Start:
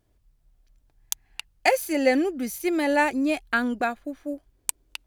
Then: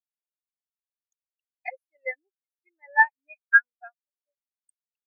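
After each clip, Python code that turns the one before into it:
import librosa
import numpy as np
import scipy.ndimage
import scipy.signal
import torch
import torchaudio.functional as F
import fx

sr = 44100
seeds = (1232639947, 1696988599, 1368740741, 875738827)

y = scipy.signal.sosfilt(scipy.signal.butter(2, 1000.0, 'highpass', fs=sr, output='sos'), x)
y = fx.spectral_expand(y, sr, expansion=4.0)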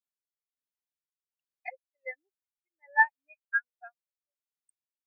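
y = x * np.abs(np.cos(np.pi * 1.3 * np.arange(len(x)) / sr))
y = F.gain(torch.from_numpy(y), -3.5).numpy()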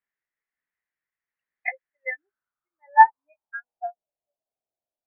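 y = fx.filter_sweep_lowpass(x, sr, from_hz=1900.0, to_hz=670.0, start_s=1.86, end_s=3.97, q=6.1)
y = fx.doubler(y, sr, ms=17.0, db=-9.5)
y = F.gain(torch.from_numpy(y), 3.0).numpy()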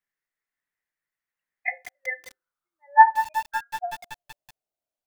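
y = fx.room_shoebox(x, sr, seeds[0], volume_m3=150.0, walls='furnished', distance_m=0.42)
y = fx.echo_crushed(y, sr, ms=186, feedback_pct=80, bits=5, wet_db=-11.0)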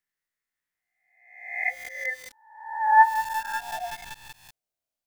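y = fx.spec_swells(x, sr, rise_s=0.76)
y = fx.peak_eq(y, sr, hz=690.0, db=-4.5, octaves=2.9)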